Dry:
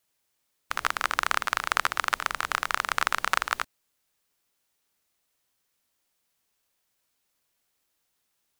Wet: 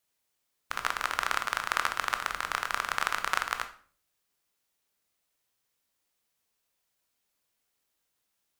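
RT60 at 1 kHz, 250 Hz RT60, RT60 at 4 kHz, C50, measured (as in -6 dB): 0.45 s, 0.60 s, 0.40 s, 12.0 dB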